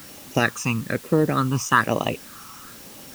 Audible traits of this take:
phaser sweep stages 8, 1.1 Hz, lowest notch 540–1,500 Hz
a quantiser's noise floor 8 bits, dither triangular

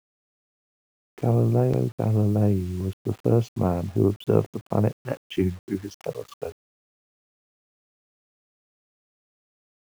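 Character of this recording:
a quantiser's noise floor 8 bits, dither none

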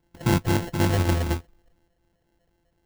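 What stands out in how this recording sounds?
a buzz of ramps at a fixed pitch in blocks of 128 samples
phaser sweep stages 12, 4 Hz, lowest notch 370–1,100 Hz
aliases and images of a low sample rate 1,200 Hz, jitter 0%

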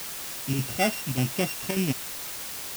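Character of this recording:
a buzz of ramps at a fixed pitch in blocks of 16 samples
chopped level 1.7 Hz, depth 60%, duty 90%
a quantiser's noise floor 6 bits, dither triangular

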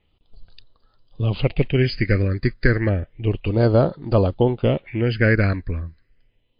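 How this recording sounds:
phaser sweep stages 6, 0.31 Hz, lowest notch 790–2,200 Hz
MP3

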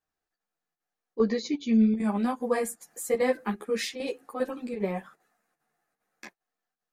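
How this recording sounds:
chopped level 2.5 Hz, depth 60%, duty 85%
a shimmering, thickened sound

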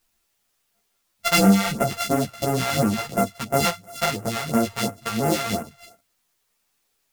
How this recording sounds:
a buzz of ramps at a fixed pitch in blocks of 64 samples
phaser sweep stages 2, 2.9 Hz, lowest notch 230–3,800 Hz
a quantiser's noise floor 12 bits, dither triangular
a shimmering, thickened sound

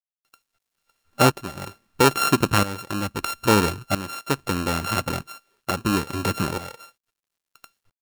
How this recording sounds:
a buzz of ramps at a fixed pitch in blocks of 32 samples
tremolo saw up 0.76 Hz, depth 80%
a quantiser's noise floor 12 bits, dither none

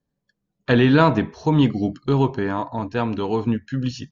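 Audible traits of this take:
background noise floor −80 dBFS
spectral slope −6.0 dB per octave

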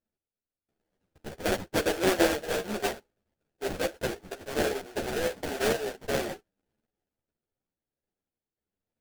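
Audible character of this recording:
sample-and-hold tremolo
aliases and images of a low sample rate 1,100 Hz, jitter 20%
a shimmering, thickened sound

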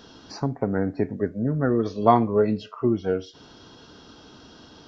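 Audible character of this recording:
background noise floor −50 dBFS
spectral slope −6.0 dB per octave

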